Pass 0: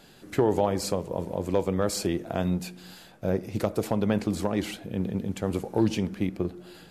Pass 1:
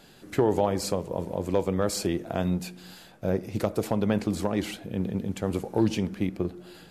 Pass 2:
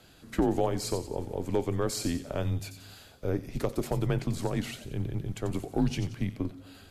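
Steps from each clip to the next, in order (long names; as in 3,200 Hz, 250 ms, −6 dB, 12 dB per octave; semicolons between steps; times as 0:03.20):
no processing that can be heard
frequency shifter −80 Hz; delay with a high-pass on its return 90 ms, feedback 41%, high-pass 3,600 Hz, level −7 dB; level −3 dB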